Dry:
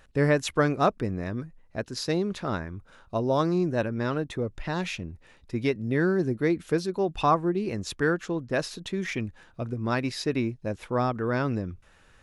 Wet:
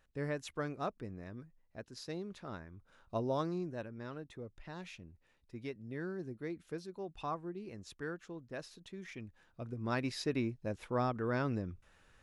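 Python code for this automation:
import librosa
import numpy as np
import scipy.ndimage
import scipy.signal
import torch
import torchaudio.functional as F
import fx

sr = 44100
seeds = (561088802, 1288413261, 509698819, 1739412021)

y = fx.gain(x, sr, db=fx.line((2.71, -15.5), (3.17, -8.0), (3.87, -17.0), (9.13, -17.0), (10.0, -7.5)))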